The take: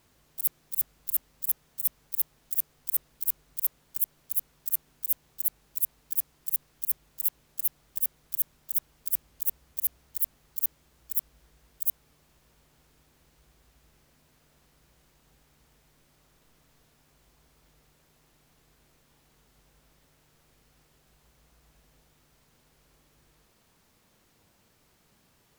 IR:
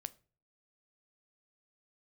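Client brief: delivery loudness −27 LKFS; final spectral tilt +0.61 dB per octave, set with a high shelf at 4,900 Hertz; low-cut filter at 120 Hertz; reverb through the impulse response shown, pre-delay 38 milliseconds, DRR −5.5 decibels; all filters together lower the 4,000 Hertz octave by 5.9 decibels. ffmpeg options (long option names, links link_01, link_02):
-filter_complex "[0:a]highpass=120,equalizer=frequency=4000:width_type=o:gain=-4,highshelf=frequency=4900:gain=-8,asplit=2[link_01][link_02];[1:a]atrim=start_sample=2205,adelay=38[link_03];[link_02][link_03]afir=irnorm=-1:irlink=0,volume=9dB[link_04];[link_01][link_04]amix=inputs=2:normalize=0,volume=4dB"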